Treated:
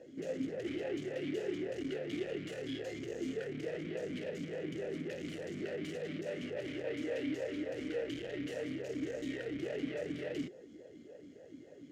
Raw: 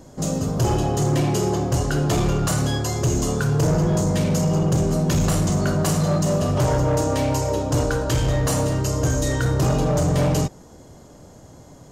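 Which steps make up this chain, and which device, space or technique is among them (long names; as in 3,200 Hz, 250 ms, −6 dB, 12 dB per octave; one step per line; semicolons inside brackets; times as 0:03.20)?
talk box (tube saturation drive 32 dB, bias 0.6; formant filter swept between two vowels e-i 3.5 Hz)
level +7 dB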